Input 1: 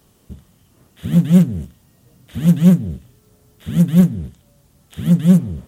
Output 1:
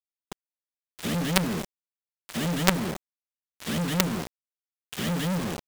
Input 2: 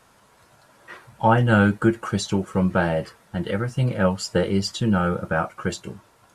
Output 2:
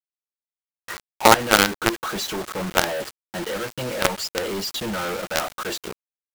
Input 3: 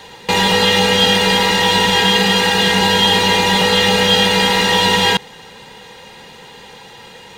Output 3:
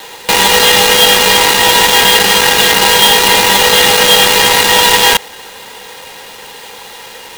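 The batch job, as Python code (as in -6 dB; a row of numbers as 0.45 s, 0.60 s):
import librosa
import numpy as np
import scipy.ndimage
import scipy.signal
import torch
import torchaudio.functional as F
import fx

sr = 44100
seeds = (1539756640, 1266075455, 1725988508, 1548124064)

y = fx.bandpass_edges(x, sr, low_hz=370.0, high_hz=6600.0)
y = fx.quant_companded(y, sr, bits=2)
y = y * librosa.db_to_amplitude(-1.0)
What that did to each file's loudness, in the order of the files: -12.5 LU, 0.0 LU, +6.0 LU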